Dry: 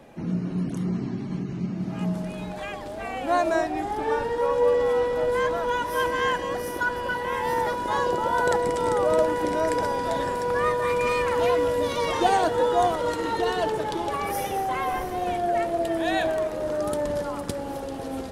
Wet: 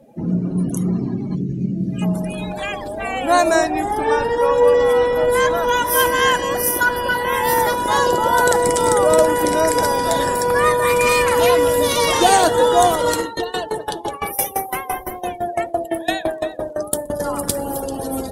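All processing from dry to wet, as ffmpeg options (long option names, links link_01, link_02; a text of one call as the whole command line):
ffmpeg -i in.wav -filter_complex "[0:a]asettb=1/sr,asplit=3[link_01][link_02][link_03];[link_01]atrim=end=1.354[link_04];[link_02]atrim=start=1.35:end=2.02,asetpts=PTS-STARTPTS,afade=type=in:duration=0.004:curve=qsin,afade=type=out:start_time=0.666:duration=0.004:curve=qsin,equalizer=frequency=960:width_type=o:width=1.3:gain=-11,bandreject=frequency=860:width=5.5,asplit=2[link_05][link_06];[link_06]adelay=15,volume=-6.5dB[link_07];[link_05][link_07]amix=inputs=2:normalize=0,atrim=end_sample=29547[link_08];[link_03]atrim=start=2.016[link_09];[link_04][link_08]acrossfade=duration=0.004:curve1=hsin:curve2=qsin[link_10];[link_10][link_09]acrossfade=duration=0.004:curve1=qsin:curve2=hsin,asettb=1/sr,asplit=3[link_11][link_12][link_13];[link_11]atrim=end=13.204[link_14];[link_12]atrim=start=13.2:end=17.2,asetpts=PTS-STARTPTS,afade=type=in:duration=0.004:curve=qsin,afade=type=out:start_time=3.996:duration=0.004:curve=qsin,aecho=1:1:344:0.299,atrim=end_sample=176400,aeval=exprs='val(0)*pow(10,-19*if(lt(mod(5.9*n/s,1),2*abs(5.9)/1000),1-mod(5.9*n/s,1)/(2*abs(5.9)/1000),(mod(5.9*n/s,1)-2*abs(5.9)/1000)/(1-2*abs(5.9)/1000))/20)':channel_layout=same[link_15];[link_13]atrim=start=17.196[link_16];[link_14][link_15]acrossfade=duration=0.004:curve1=hsin:curve2=qsin[link_17];[link_17][link_16]acrossfade=duration=0.004:curve1=qsin:curve2=hsin,aemphasis=mode=production:type=75fm,afftdn=noise_reduction=23:noise_floor=-41,alimiter=level_in=9dB:limit=-1dB:release=50:level=0:latency=1,volume=-1dB" out.wav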